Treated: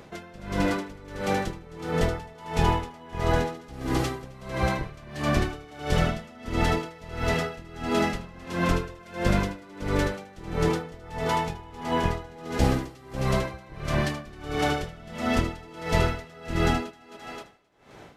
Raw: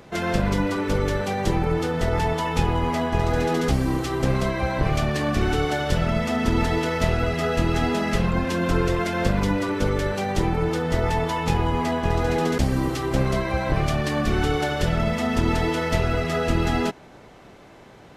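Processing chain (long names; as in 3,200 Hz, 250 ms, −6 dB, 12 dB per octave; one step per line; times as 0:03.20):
feedback echo with a high-pass in the loop 263 ms, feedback 43%, level −3.5 dB
tremolo with a sine in dB 1.5 Hz, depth 24 dB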